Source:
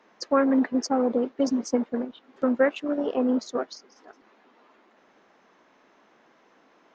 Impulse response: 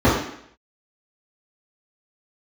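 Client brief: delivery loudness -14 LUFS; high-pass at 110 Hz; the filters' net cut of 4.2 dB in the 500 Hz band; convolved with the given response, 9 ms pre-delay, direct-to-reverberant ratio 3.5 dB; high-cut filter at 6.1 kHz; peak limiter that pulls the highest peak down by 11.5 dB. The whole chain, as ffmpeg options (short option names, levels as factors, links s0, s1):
-filter_complex "[0:a]highpass=110,lowpass=6100,equalizer=f=500:t=o:g=-4.5,alimiter=limit=0.0841:level=0:latency=1,asplit=2[s0][s1];[1:a]atrim=start_sample=2205,adelay=9[s2];[s1][s2]afir=irnorm=-1:irlink=0,volume=0.0447[s3];[s0][s3]amix=inputs=2:normalize=0,volume=2.99"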